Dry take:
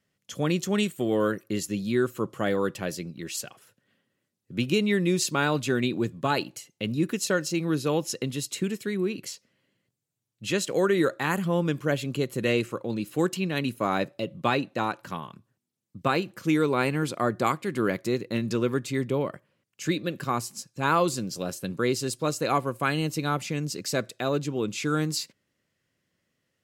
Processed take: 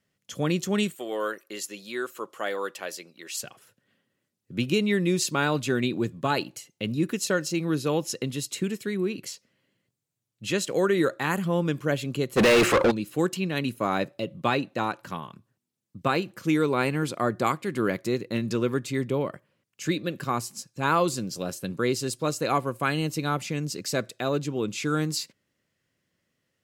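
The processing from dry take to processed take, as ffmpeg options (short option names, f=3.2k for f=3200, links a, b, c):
-filter_complex "[0:a]asettb=1/sr,asplit=3[a][b][c];[a]atrim=end=0.954[d];[b]atrim=start=0.95:end=3.43,asetpts=PTS-STARTPTS,afade=t=in:d=0.004:c=qsin,afade=t=out:st=2.476:d=0.004:c=qsin,highpass=560[e];[c]atrim=start=3.426[f];[d][e]acrossfade=d=0.004:c1=hsin:c2=qsin[g];[g][f]acrossfade=d=0.004:c1=qsin:c2=hsin,asplit=3[h][i][j];[h]afade=t=out:st=12.36:d=0.02[k];[i]asplit=2[l][m];[m]highpass=f=720:p=1,volume=37dB,asoftclip=type=tanh:threshold=-11dB[n];[l][n]amix=inputs=2:normalize=0,lowpass=f=3k:p=1,volume=-6dB,afade=t=in:st=12.36:d=0.02,afade=t=out:st=12.9:d=0.02[o];[j]afade=t=in:st=12.9:d=0.02[p];[k][o][p]amix=inputs=3:normalize=0"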